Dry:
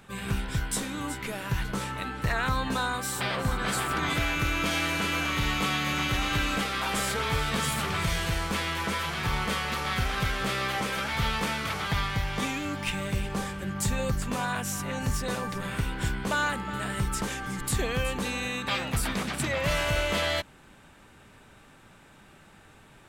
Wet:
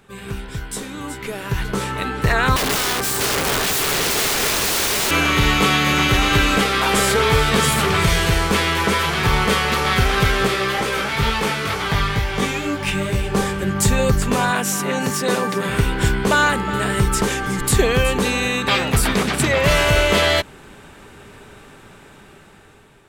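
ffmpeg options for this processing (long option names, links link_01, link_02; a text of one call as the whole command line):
ffmpeg -i in.wav -filter_complex "[0:a]asettb=1/sr,asplit=3[link_01][link_02][link_03];[link_01]atrim=end=2.564[link_04];[link_02]atrim=start=2.56:end=5.11,asetpts=PTS-STARTPTS,afade=type=in:duration=0.004:curve=qsin,afade=type=out:start_time=2.546:duration=0.004:curve=qsin,aeval=exprs='(mod(20*val(0)+1,2)-1)/20':channel_layout=same[link_05];[link_03]atrim=start=5.106[link_06];[link_04][link_05]acrossfade=duration=0.004:curve1=hsin:curve2=qsin[link_07];[link_07][link_06]acrossfade=duration=0.004:curve1=qsin:curve2=hsin,asplit=3[link_08][link_09][link_10];[link_08]afade=type=out:start_time=10.46:duration=0.02[link_11];[link_09]flanger=delay=17:depth=4.1:speed=2.2,afade=type=in:start_time=10.46:duration=0.02,afade=type=out:start_time=13.33:duration=0.02[link_12];[link_10]afade=type=in:start_time=13.33:duration=0.02[link_13];[link_11][link_12][link_13]amix=inputs=3:normalize=0,asettb=1/sr,asplit=3[link_14][link_15][link_16];[link_14]atrim=end=14.514[link_17];[link_15]atrim=start=14.51:end=15.69,asetpts=PTS-STARTPTS,afade=type=in:duration=0.004:curve=qsin,afade=type=out:start_time=1.176:duration=0.004:curve=qsin,highpass=frequency=160:width=0.5412,highpass=frequency=160:width=1.3066[link_18];[link_16]atrim=start=15.686[link_19];[link_17][link_18]acrossfade=duration=0.004:curve1=hsin:curve2=qsin[link_20];[link_20][link_19]acrossfade=duration=0.004:curve1=qsin:curve2=hsin,equalizer=frequency=410:width=5.4:gain=8.5,dynaudnorm=framelen=670:gausssize=5:maxgain=11.5dB" out.wav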